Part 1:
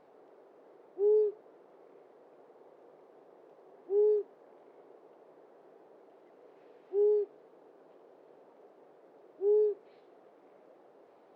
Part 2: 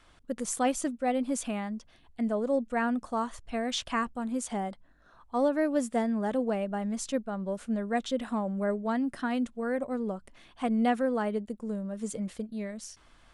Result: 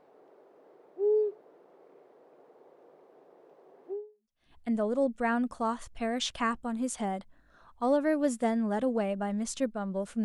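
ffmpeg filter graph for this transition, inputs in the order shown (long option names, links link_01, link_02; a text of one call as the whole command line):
ffmpeg -i cue0.wav -i cue1.wav -filter_complex "[0:a]apad=whole_dur=10.24,atrim=end=10.24,atrim=end=4.51,asetpts=PTS-STARTPTS[link_01];[1:a]atrim=start=1.43:end=7.76,asetpts=PTS-STARTPTS[link_02];[link_01][link_02]acrossfade=duration=0.6:curve1=exp:curve2=exp" out.wav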